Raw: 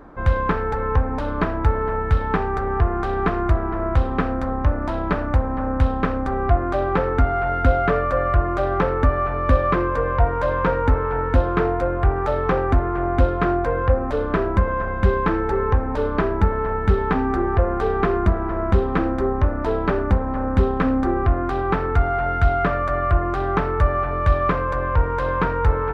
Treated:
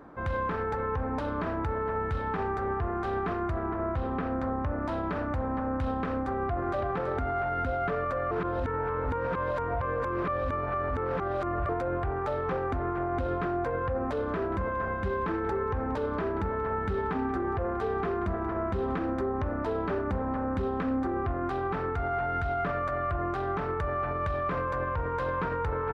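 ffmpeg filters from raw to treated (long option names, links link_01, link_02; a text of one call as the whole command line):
ffmpeg -i in.wav -filter_complex "[0:a]asettb=1/sr,asplit=3[link_01][link_02][link_03];[link_01]atrim=end=3.664[link_04];[link_02]atrim=start=3.66:end=4.79,asetpts=PTS-STARTPTS,afade=type=in:duration=0.004:curve=qsin,afade=type=out:start_time=1.126:duration=0.004:curve=qsin,lowpass=frequency=3200:poles=1[link_05];[link_03]atrim=start=4.786[link_06];[link_04][link_05]acrossfade=duration=0.004:curve1=hsin:curve2=qsin[link_07];[link_07][link_06]acrossfade=duration=0.004:curve1=qsin:curve2=hsin,asplit=2[link_08][link_09];[link_09]afade=type=in:start_time=6.29:duration=0.01,afade=type=out:start_time=6.86:duration=0.01,aecho=0:1:330|660|990:0.473151|0.0946303|0.0189261[link_10];[link_08][link_10]amix=inputs=2:normalize=0,asettb=1/sr,asplit=3[link_11][link_12][link_13];[link_11]atrim=end=14.074[link_14];[link_12]atrim=start=14.07:end=18.97,asetpts=PTS-STARTPTS,afade=type=in:duration=0.004:curve=qsin,afade=type=out:start_time=4.896:duration=0.004:curve=qsin,aecho=1:1:183:0.119,atrim=end_sample=216090[link_15];[link_13]atrim=start=18.966[link_16];[link_14][link_15]acrossfade=duration=0.004:curve1=hsin:curve2=qsin[link_17];[link_17][link_16]acrossfade=duration=0.004:curve1=qsin:curve2=hsin,asplit=3[link_18][link_19][link_20];[link_18]atrim=end=8.312[link_21];[link_19]atrim=start=8.308:end=11.692,asetpts=PTS-STARTPTS,areverse[link_22];[link_20]atrim=start=11.688[link_23];[link_21][link_22]acrossfade=duration=0.004:curve1=hsin:curve2=hsin[link_24];[link_24][link_23]acrossfade=duration=0.004:curve1=hsin:curve2=hsin,highpass=74,alimiter=limit=-17.5dB:level=0:latency=1:release=28,volume=-5dB" out.wav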